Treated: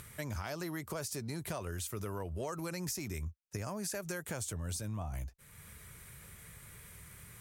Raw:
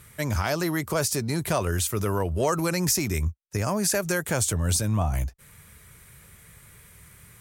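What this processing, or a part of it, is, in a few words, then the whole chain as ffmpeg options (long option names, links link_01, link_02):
upward and downward compression: -af "acompressor=mode=upward:threshold=-38dB:ratio=2.5,acompressor=threshold=-31dB:ratio=3,volume=-7dB"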